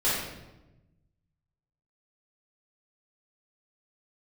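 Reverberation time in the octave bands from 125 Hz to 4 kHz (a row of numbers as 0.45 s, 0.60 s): 1.7 s, 1.4 s, 1.1 s, 0.95 s, 0.85 s, 0.75 s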